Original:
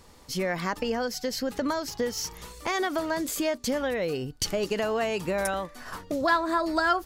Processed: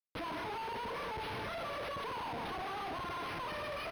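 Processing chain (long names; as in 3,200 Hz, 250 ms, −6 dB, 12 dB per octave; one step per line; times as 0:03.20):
change of speed 1.8×
EQ curve with evenly spaced ripples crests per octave 1.7, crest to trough 7 dB
reverse bouncing-ball delay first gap 30 ms, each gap 1.6×, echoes 5
on a send at −21 dB: convolution reverb RT60 0.85 s, pre-delay 41 ms
on the sum: gain into a clipping stage and back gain 20.5 dB
dynamic equaliser 930 Hz, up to +7 dB, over −41 dBFS, Q 2.4
output level in coarse steps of 23 dB
brickwall limiter −40 dBFS, peak gain reduction 24 dB
comparator with hysteresis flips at −55.5 dBFS
high-pass filter 51 Hz
linearly interpolated sample-rate reduction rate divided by 6×
level +9 dB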